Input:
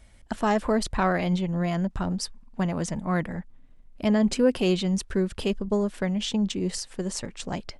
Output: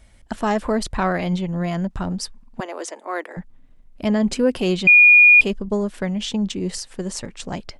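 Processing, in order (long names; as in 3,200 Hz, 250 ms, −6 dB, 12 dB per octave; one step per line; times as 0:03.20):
0:02.60–0:03.37: Butterworth high-pass 330 Hz 48 dB per octave
0:04.87–0:05.41: beep over 2,440 Hz −9 dBFS
level +2.5 dB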